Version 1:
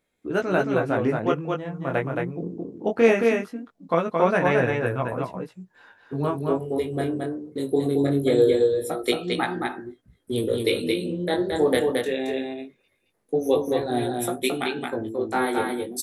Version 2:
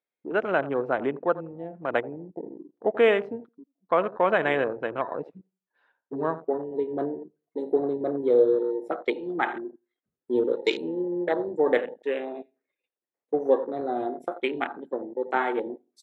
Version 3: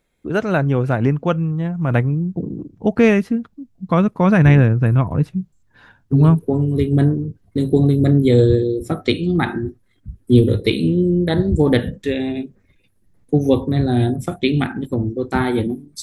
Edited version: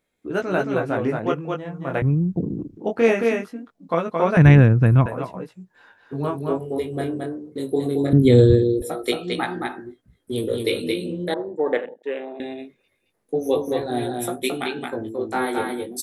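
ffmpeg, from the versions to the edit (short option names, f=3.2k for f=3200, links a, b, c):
-filter_complex "[2:a]asplit=3[a][b][c];[0:a]asplit=5[d][e][f][g][h];[d]atrim=end=2.022[i];[a]atrim=start=2.018:end=2.772[j];[e]atrim=start=2.768:end=4.372[k];[b]atrim=start=4.368:end=5.062[l];[f]atrim=start=5.058:end=8.132[m];[c]atrim=start=8.128:end=8.822[n];[g]atrim=start=8.818:end=11.342[o];[1:a]atrim=start=11.338:end=12.402[p];[h]atrim=start=12.398[q];[i][j]acrossfade=d=0.004:c1=hsin:c2=hsin[r];[r][k]acrossfade=d=0.004:c1=hsin:c2=hsin[s];[s][l]acrossfade=d=0.004:c1=hsin:c2=hsin[t];[t][m]acrossfade=d=0.004:c1=hsin:c2=hsin[u];[u][n]acrossfade=d=0.004:c1=hsin:c2=hsin[v];[v][o]acrossfade=d=0.004:c1=hsin:c2=hsin[w];[w][p]acrossfade=d=0.004:c1=hsin:c2=hsin[x];[x][q]acrossfade=d=0.004:c1=hsin:c2=hsin"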